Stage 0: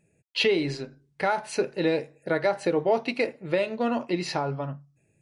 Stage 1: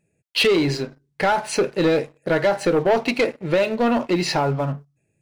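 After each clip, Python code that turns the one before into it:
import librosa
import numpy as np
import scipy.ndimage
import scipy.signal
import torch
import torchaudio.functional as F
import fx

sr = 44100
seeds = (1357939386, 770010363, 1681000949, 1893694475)

y = fx.leveller(x, sr, passes=2)
y = y * librosa.db_to_amplitude(1.5)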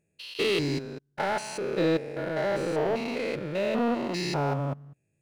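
y = fx.spec_steps(x, sr, hold_ms=200)
y = y * librosa.db_to_amplitude(-4.5)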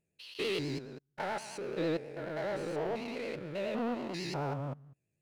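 y = fx.vibrato(x, sr, rate_hz=9.3, depth_cents=80.0)
y = y * librosa.db_to_amplitude(-8.0)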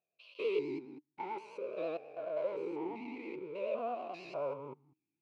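y = fx.vowel_sweep(x, sr, vowels='a-u', hz=0.49)
y = y * librosa.db_to_amplitude(7.5)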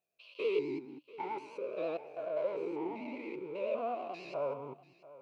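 y = x + 10.0 ** (-18.5 / 20.0) * np.pad(x, (int(689 * sr / 1000.0), 0))[:len(x)]
y = y * librosa.db_to_amplitude(1.5)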